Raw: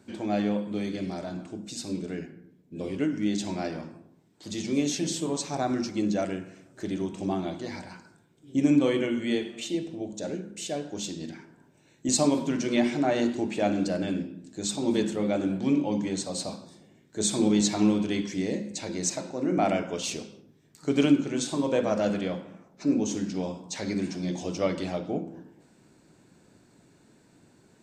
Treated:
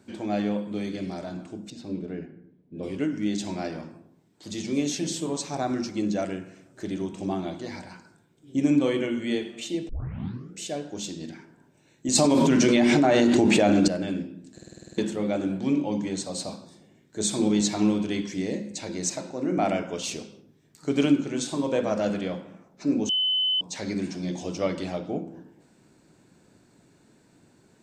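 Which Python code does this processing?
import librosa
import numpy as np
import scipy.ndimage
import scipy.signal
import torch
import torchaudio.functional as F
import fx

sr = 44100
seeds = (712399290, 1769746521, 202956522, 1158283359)

y = fx.curve_eq(x, sr, hz=(620.0, 3700.0, 8000.0), db=(0, -8, -21), at=(1.7, 2.83))
y = fx.env_flatten(y, sr, amount_pct=100, at=(12.15, 13.88))
y = fx.edit(y, sr, fx.tape_start(start_s=9.89, length_s=0.71),
    fx.stutter_over(start_s=14.53, slice_s=0.05, count=9),
    fx.bleep(start_s=23.09, length_s=0.52, hz=3030.0, db=-21.0), tone=tone)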